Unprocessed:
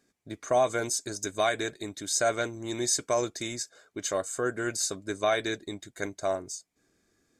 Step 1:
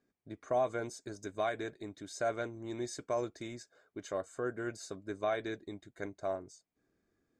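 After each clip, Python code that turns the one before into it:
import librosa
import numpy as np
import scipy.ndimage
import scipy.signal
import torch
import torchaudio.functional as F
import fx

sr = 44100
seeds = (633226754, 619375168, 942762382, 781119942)

y = fx.lowpass(x, sr, hz=1400.0, slope=6)
y = F.gain(torch.from_numpy(y), -6.0).numpy()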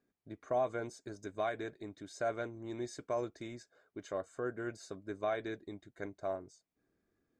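y = fx.high_shelf(x, sr, hz=5000.0, db=-7.0)
y = F.gain(torch.from_numpy(y), -1.5).numpy()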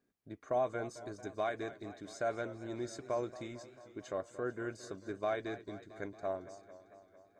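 y = fx.echo_warbled(x, sr, ms=224, feedback_pct=69, rate_hz=2.8, cents=105, wet_db=-15.5)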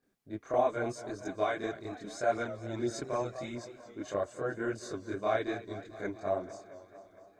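y = fx.chorus_voices(x, sr, voices=2, hz=0.84, base_ms=26, depth_ms=4.8, mix_pct=65)
y = F.gain(torch.from_numpy(y), 8.0).numpy()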